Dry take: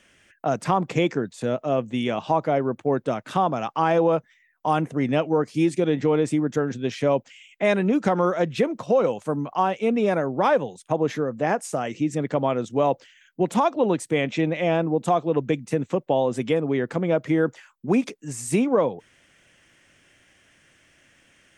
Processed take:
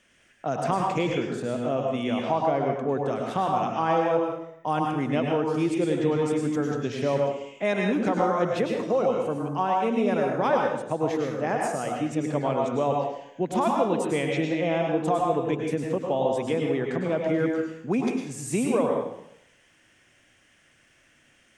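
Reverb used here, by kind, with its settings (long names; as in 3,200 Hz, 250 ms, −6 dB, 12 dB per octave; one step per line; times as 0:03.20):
dense smooth reverb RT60 0.72 s, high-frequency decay 0.9×, pre-delay 90 ms, DRR 0 dB
level −5 dB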